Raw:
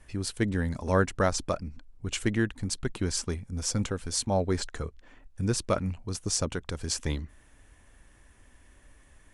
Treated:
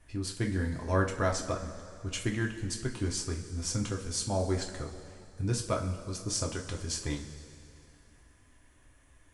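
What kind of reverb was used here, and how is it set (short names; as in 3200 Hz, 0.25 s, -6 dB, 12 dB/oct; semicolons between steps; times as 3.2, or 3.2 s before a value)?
two-slope reverb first 0.27 s, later 2.6 s, from -16 dB, DRR 0.5 dB; gain -6 dB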